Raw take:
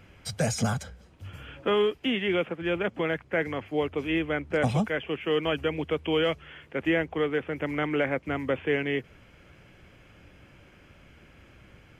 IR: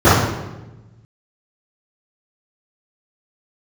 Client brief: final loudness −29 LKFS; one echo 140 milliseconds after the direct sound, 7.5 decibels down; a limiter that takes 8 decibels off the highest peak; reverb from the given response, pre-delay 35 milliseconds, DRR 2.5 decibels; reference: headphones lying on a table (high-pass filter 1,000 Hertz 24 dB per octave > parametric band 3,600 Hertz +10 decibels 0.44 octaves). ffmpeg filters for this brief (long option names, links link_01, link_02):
-filter_complex "[0:a]alimiter=limit=-22.5dB:level=0:latency=1,aecho=1:1:140:0.422,asplit=2[link_01][link_02];[1:a]atrim=start_sample=2205,adelay=35[link_03];[link_02][link_03]afir=irnorm=-1:irlink=0,volume=-33.5dB[link_04];[link_01][link_04]amix=inputs=2:normalize=0,highpass=frequency=1000:width=0.5412,highpass=frequency=1000:width=1.3066,equalizer=frequency=3600:width_type=o:width=0.44:gain=10,volume=6dB"